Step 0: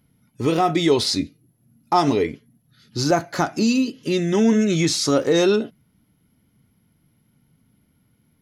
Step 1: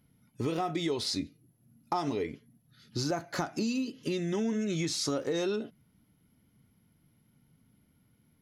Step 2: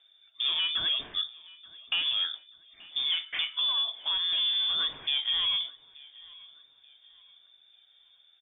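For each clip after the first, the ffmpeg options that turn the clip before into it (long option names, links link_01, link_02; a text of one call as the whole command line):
ffmpeg -i in.wav -af "acompressor=threshold=-25dB:ratio=4,volume=-4.5dB" out.wav
ffmpeg -i in.wav -af "asoftclip=type=tanh:threshold=-27.5dB,aecho=1:1:881|1762|2643:0.075|0.0277|0.0103,lowpass=frequency=3100:width_type=q:width=0.5098,lowpass=frequency=3100:width_type=q:width=0.6013,lowpass=frequency=3100:width_type=q:width=0.9,lowpass=frequency=3100:width_type=q:width=2.563,afreqshift=-3700,volume=5dB" out.wav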